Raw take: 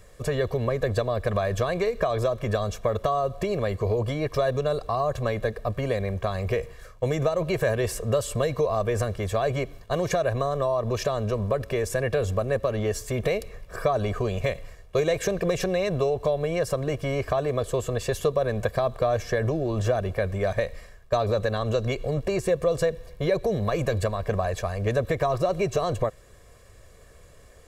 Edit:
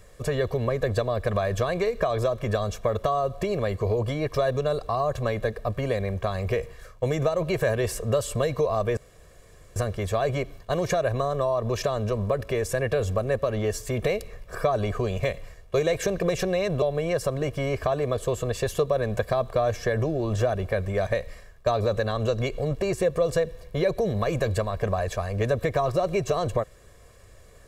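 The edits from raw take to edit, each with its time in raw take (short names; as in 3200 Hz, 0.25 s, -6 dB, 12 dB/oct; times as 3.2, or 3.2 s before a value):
8.97 insert room tone 0.79 s
16.03–16.28 cut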